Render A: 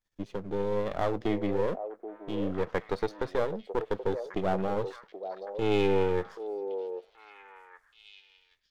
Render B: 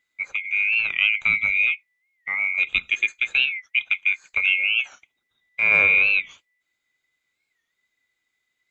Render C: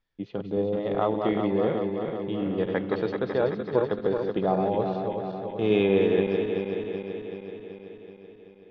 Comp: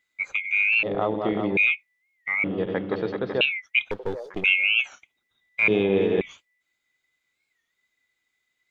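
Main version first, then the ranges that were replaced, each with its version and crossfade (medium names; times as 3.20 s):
B
0.83–1.57 s: from C
2.44–3.41 s: from C
3.91–4.44 s: from A
5.68–6.21 s: from C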